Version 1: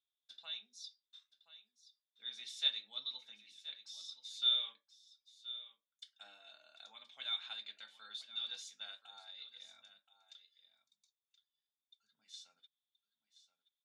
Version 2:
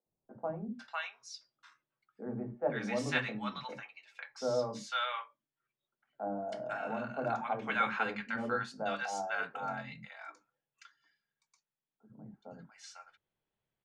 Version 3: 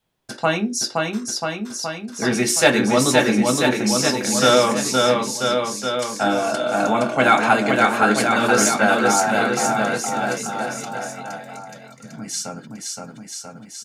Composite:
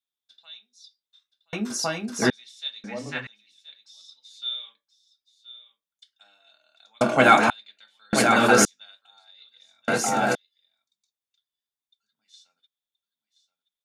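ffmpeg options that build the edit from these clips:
-filter_complex "[2:a]asplit=4[a][b][c][d];[0:a]asplit=6[e][f][g][h][i][j];[e]atrim=end=1.532[k];[a]atrim=start=1.528:end=2.302[l];[f]atrim=start=2.298:end=2.842[m];[1:a]atrim=start=2.838:end=3.272[n];[g]atrim=start=3.268:end=7.012[o];[b]atrim=start=7.008:end=7.502[p];[h]atrim=start=7.498:end=8.132[q];[c]atrim=start=8.128:end=8.652[r];[i]atrim=start=8.648:end=9.882[s];[d]atrim=start=9.878:end=10.352[t];[j]atrim=start=10.348[u];[k][l]acrossfade=d=0.004:c1=hsin:c2=hsin[v];[v][m]acrossfade=d=0.004:c1=hsin:c2=hsin[w];[w][n]acrossfade=d=0.004:c1=hsin:c2=hsin[x];[x][o]acrossfade=d=0.004:c1=hsin:c2=hsin[y];[y][p]acrossfade=d=0.004:c1=hsin:c2=hsin[z];[z][q]acrossfade=d=0.004:c1=hsin:c2=hsin[aa];[aa][r]acrossfade=d=0.004:c1=hsin:c2=hsin[ab];[ab][s]acrossfade=d=0.004:c1=hsin:c2=hsin[ac];[ac][t]acrossfade=d=0.004:c1=hsin:c2=hsin[ad];[ad][u]acrossfade=d=0.004:c1=hsin:c2=hsin"

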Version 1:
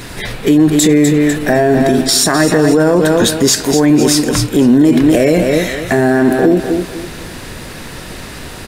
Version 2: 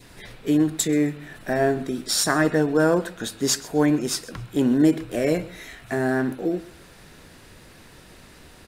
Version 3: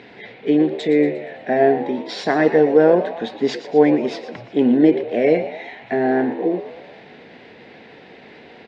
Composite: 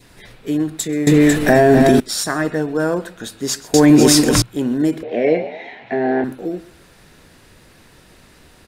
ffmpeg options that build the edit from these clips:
-filter_complex "[0:a]asplit=2[a][b];[1:a]asplit=4[c][d][e][f];[c]atrim=end=1.072[g];[a]atrim=start=1.068:end=2.002[h];[d]atrim=start=1.998:end=3.742[i];[b]atrim=start=3.738:end=4.422[j];[e]atrim=start=4.418:end=5.032[k];[2:a]atrim=start=5.028:end=6.242[l];[f]atrim=start=6.238[m];[g][h]acrossfade=d=0.004:c1=hsin:c2=hsin[n];[n][i]acrossfade=d=0.004:c1=hsin:c2=hsin[o];[o][j]acrossfade=d=0.004:c1=hsin:c2=hsin[p];[p][k]acrossfade=d=0.004:c1=hsin:c2=hsin[q];[q][l]acrossfade=d=0.004:c1=hsin:c2=hsin[r];[r][m]acrossfade=d=0.004:c1=hsin:c2=hsin"

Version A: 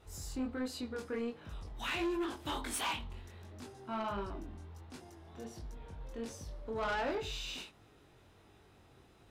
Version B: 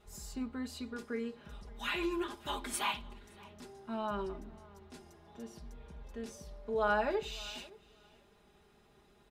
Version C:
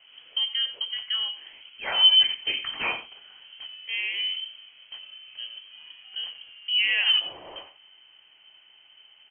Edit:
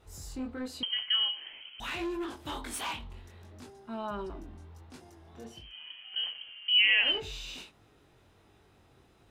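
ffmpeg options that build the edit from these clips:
-filter_complex "[2:a]asplit=2[a][b];[0:a]asplit=4[c][d][e][f];[c]atrim=end=0.832[g];[a]atrim=start=0.828:end=1.802[h];[d]atrim=start=1.798:end=3.702[i];[1:a]atrim=start=3.698:end=4.302[j];[e]atrim=start=4.298:end=5.74[k];[b]atrim=start=5.5:end=7.21[l];[f]atrim=start=6.97[m];[g][h]acrossfade=d=0.004:c1=hsin:c2=hsin[n];[n][i]acrossfade=d=0.004:c1=hsin:c2=hsin[o];[o][j]acrossfade=d=0.004:c1=hsin:c2=hsin[p];[p][k]acrossfade=d=0.004:c1=hsin:c2=hsin[q];[q][l]acrossfade=d=0.24:c1=tri:c2=tri[r];[r][m]acrossfade=d=0.24:c1=tri:c2=tri"

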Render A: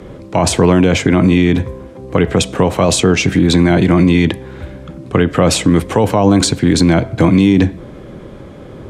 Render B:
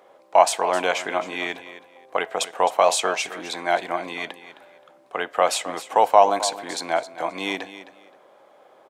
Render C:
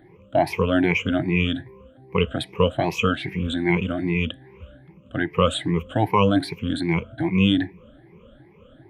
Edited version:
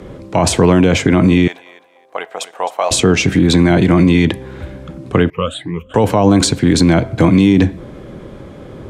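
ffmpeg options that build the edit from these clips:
-filter_complex "[0:a]asplit=3[a][b][c];[a]atrim=end=1.482[d];[1:a]atrim=start=1.478:end=2.912[e];[b]atrim=start=2.908:end=5.302[f];[2:a]atrim=start=5.298:end=5.942[g];[c]atrim=start=5.938[h];[d][e]acrossfade=d=0.004:c1=hsin:c2=hsin[i];[i][f]acrossfade=d=0.004:c1=hsin:c2=hsin[j];[j][g]acrossfade=d=0.004:c1=hsin:c2=hsin[k];[k][h]acrossfade=d=0.004:c1=hsin:c2=hsin"

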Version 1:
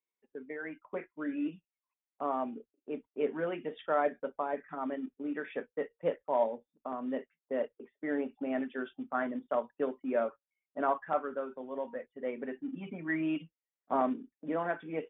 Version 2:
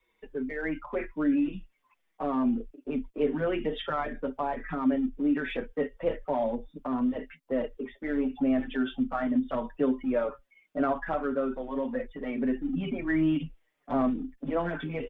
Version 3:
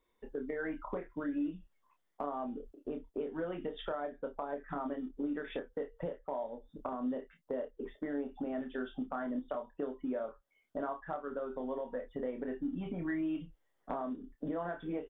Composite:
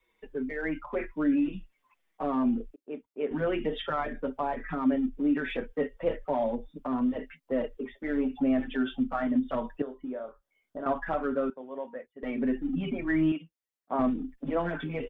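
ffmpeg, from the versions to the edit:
-filter_complex "[0:a]asplit=3[a][b][c];[1:a]asplit=5[d][e][f][g][h];[d]atrim=end=2.762[i];[a]atrim=start=2.758:end=3.312[j];[e]atrim=start=3.308:end=9.822[k];[2:a]atrim=start=9.818:end=10.862[l];[f]atrim=start=10.858:end=11.502[m];[b]atrim=start=11.498:end=12.232[n];[g]atrim=start=12.228:end=13.322[o];[c]atrim=start=13.318:end=13.992[p];[h]atrim=start=13.988[q];[i][j]acrossfade=d=0.004:c1=hsin:c2=hsin[r];[r][k]acrossfade=d=0.004:c1=hsin:c2=hsin[s];[s][l]acrossfade=d=0.004:c1=hsin:c2=hsin[t];[t][m]acrossfade=d=0.004:c1=hsin:c2=hsin[u];[u][n]acrossfade=d=0.004:c1=hsin:c2=hsin[v];[v][o]acrossfade=d=0.004:c1=hsin:c2=hsin[w];[w][p]acrossfade=d=0.004:c1=hsin:c2=hsin[x];[x][q]acrossfade=d=0.004:c1=hsin:c2=hsin"

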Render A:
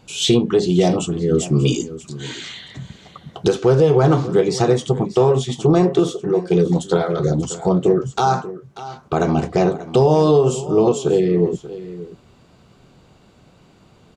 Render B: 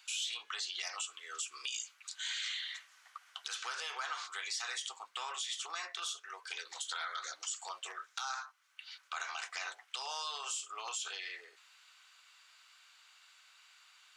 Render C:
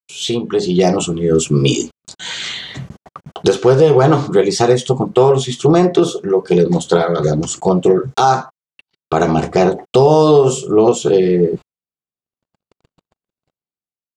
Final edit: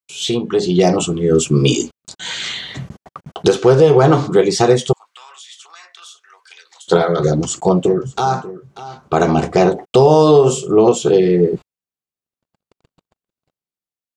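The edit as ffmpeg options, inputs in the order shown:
-filter_complex "[2:a]asplit=3[a][b][c];[a]atrim=end=4.932[d];[1:a]atrim=start=4.928:end=6.882[e];[b]atrim=start=6.878:end=7.862[f];[0:a]atrim=start=7.858:end=9.132[g];[c]atrim=start=9.128[h];[d][e]acrossfade=d=0.004:c1=hsin:c2=hsin[i];[i][f]acrossfade=d=0.004:c1=hsin:c2=hsin[j];[j][g]acrossfade=d=0.004:c1=hsin:c2=hsin[k];[k][h]acrossfade=d=0.004:c1=hsin:c2=hsin"

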